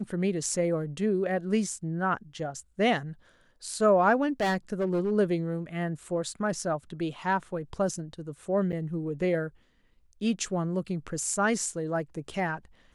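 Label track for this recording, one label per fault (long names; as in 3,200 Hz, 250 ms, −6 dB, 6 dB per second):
4.410000	5.120000	clipping −23 dBFS
8.720000	8.730000	drop-out 8.6 ms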